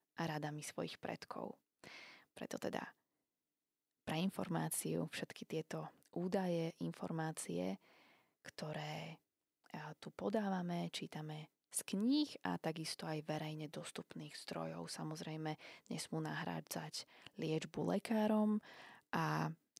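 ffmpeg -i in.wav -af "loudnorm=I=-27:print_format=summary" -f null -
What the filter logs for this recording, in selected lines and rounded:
Input Integrated:    -42.3 LUFS
Input True Peak:     -23.2 dBTP
Input LRA:             6.3 LU
Input Threshold:     -52.8 LUFS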